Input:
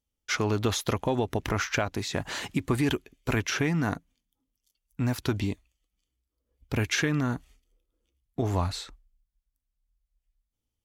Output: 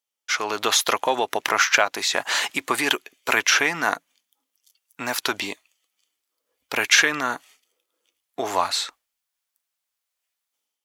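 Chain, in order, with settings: de-esser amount 40%; HPF 740 Hz 12 dB/oct; AGC gain up to 9 dB; gain +3.5 dB

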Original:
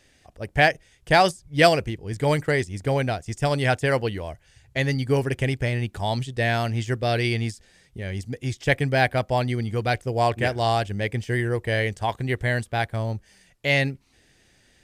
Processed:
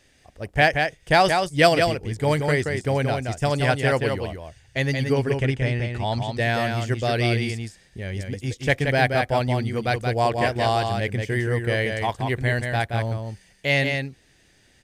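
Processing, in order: 5.13–6.37 air absorption 55 m; echo 0.177 s -5 dB

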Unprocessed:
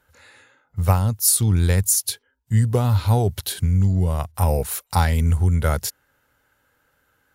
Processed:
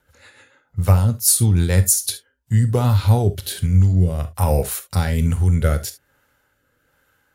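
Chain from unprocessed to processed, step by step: rotary speaker horn 6.7 Hz, later 1.2 Hz, at 1.91; non-linear reverb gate 90 ms flat, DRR 9.5 dB; gain +3.5 dB

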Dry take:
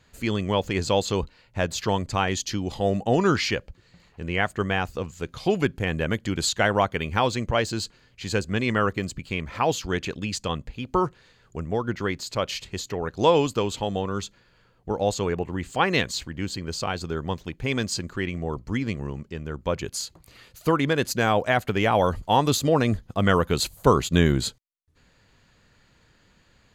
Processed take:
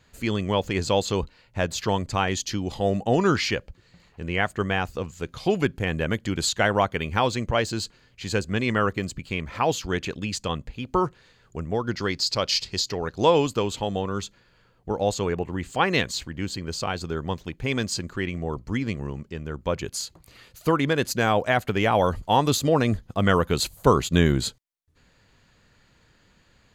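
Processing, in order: 11.87–13.13 bell 4900 Hz +14.5 dB 0.64 oct

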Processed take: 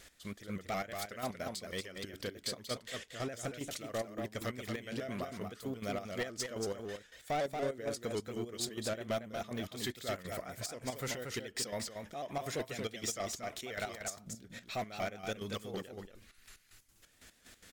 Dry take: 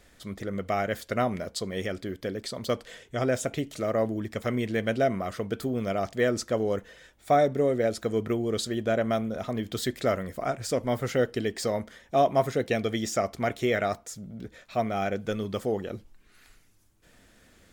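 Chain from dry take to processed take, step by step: tilt shelf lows -5.5 dB, about 1500 Hz; in parallel at +1.5 dB: compressor, threshold -41 dBFS, peak gain reduction 18.5 dB; on the sum: step gate "x..x..x.x" 183 bpm -12 dB; soft clip -24.5 dBFS, distortion -12 dB; on a send: echo 0.232 s -5.5 dB; on the sum: shaped vibrato saw up 5.4 Hz, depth 100 cents; gain -5.5 dB

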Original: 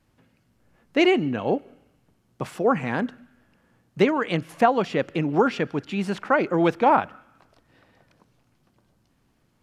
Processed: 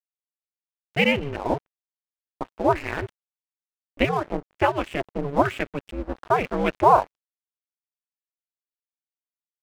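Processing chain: LFO low-pass square 1.1 Hz 880–2600 Hz; ring modulator 140 Hz; crossover distortion -37.5 dBFS

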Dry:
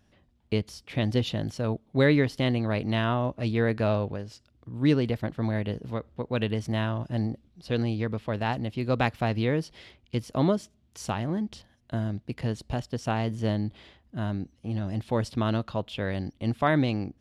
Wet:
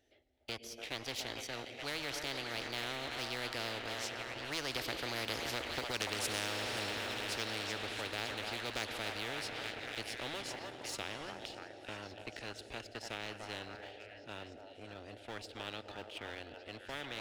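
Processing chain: Doppler pass-by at 5.91, 23 m/s, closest 3.8 m; tone controls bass -13 dB, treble -7 dB; fixed phaser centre 440 Hz, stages 4; on a send at -13.5 dB: reverb RT60 5.1 s, pre-delay 82 ms; on the sum: compressor 10:1, threshold -45 dBFS, peak gain reduction 17 dB; delay with a stepping band-pass 0.291 s, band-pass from 860 Hz, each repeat 0.7 oct, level -4 dB; sample leveller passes 1; spectral compressor 4:1; gain +18 dB

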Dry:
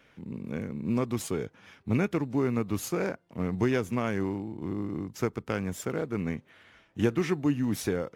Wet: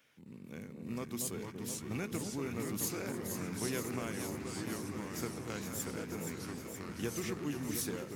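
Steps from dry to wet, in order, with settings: HPF 82 Hz; pre-emphasis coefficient 0.8; echo with dull and thin repeats by turns 0.236 s, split 1000 Hz, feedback 85%, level -5 dB; echoes that change speed 0.266 s, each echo -3 st, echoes 3, each echo -6 dB; gain +1 dB

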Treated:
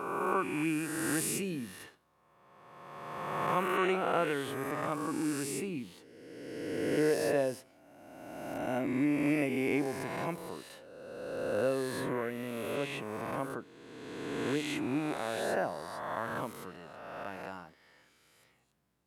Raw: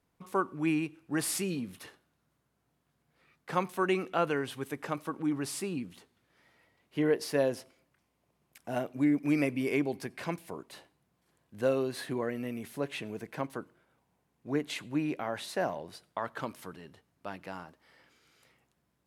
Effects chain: spectral swells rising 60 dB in 1.97 s; dynamic EQ 4700 Hz, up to -6 dB, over -52 dBFS, Q 1.7; gain -4 dB

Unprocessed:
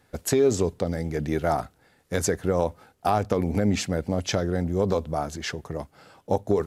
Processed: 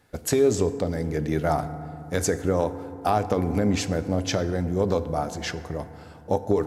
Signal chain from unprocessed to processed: FDN reverb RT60 2.7 s, low-frequency decay 1.45×, high-frequency decay 0.35×, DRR 11 dB

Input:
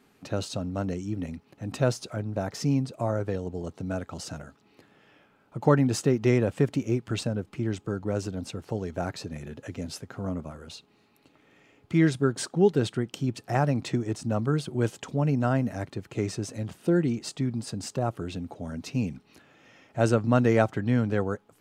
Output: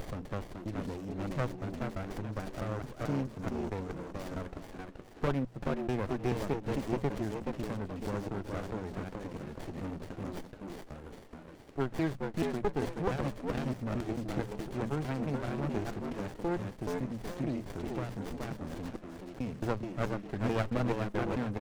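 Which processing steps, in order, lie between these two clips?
slices in reverse order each 0.218 s, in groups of 3; in parallel at -1 dB: compressor, threshold -31 dBFS, peak gain reduction 16 dB; on the sum: low shelf 430 Hz -5.5 dB; notches 60/120/180 Hz; on a send: frequency-shifting echo 0.426 s, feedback 31%, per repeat +92 Hz, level -4.5 dB; on the sum: upward compressor, threshold -36 dBFS; running maximum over 33 samples; gain -5.5 dB

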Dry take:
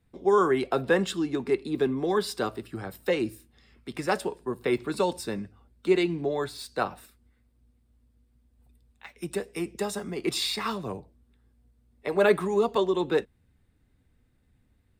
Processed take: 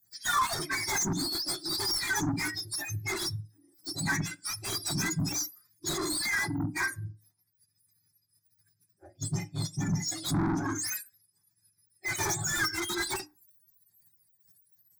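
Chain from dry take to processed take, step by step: spectrum mirrored in octaves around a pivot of 1200 Hz; band shelf 910 Hz -11.5 dB; notches 60/120/180/240/300/360 Hz; spectral noise reduction 24 dB; formant shift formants -3 st; overdrive pedal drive 30 dB, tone 7700 Hz, clips at -15.5 dBFS; fixed phaser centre 1200 Hz, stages 4; reverb RT60 0.35 s, pre-delay 5 ms, DRR 16 dB; gain -2.5 dB

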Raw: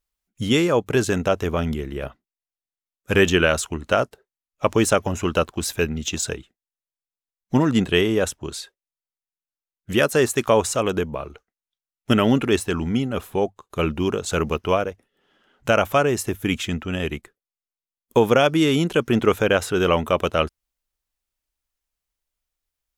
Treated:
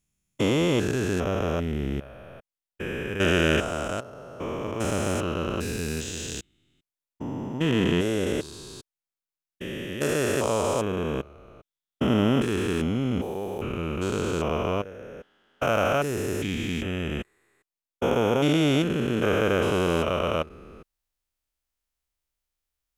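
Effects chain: stepped spectrum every 0.4 s; 3.13–3.98 notch 4200 Hz, Q 6.9

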